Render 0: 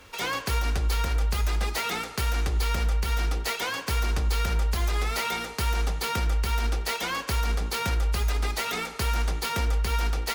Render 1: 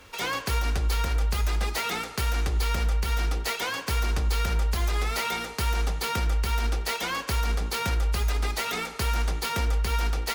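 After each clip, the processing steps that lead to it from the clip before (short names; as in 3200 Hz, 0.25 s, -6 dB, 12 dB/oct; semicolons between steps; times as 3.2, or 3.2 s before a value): nothing audible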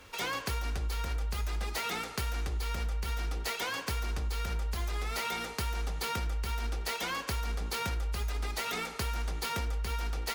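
compressor, threshold -27 dBFS, peak gain reduction 6.5 dB; gain -3 dB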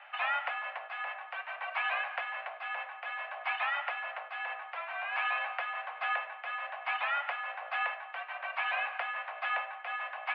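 mistuned SSB +310 Hz 320–2400 Hz; gain +4.5 dB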